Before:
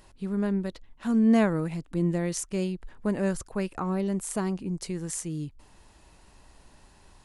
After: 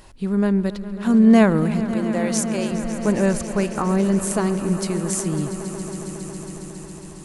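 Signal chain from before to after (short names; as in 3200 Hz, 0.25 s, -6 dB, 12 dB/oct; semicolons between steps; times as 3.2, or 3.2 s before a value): 1.94–2.72 HPF 420 Hz 24 dB/oct; swelling echo 0.137 s, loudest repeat 5, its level -16 dB; gain +8 dB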